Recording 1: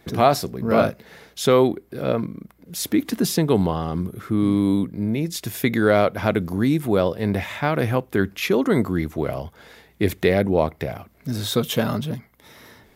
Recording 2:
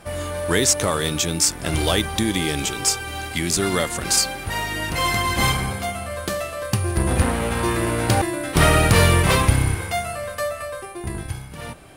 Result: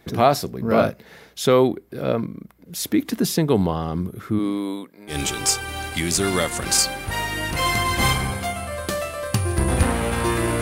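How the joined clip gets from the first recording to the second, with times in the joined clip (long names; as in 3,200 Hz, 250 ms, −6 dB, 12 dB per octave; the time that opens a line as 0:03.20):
recording 1
0:04.38–0:05.17: high-pass filter 260 Hz → 960 Hz
0:05.12: continue with recording 2 from 0:02.51, crossfade 0.10 s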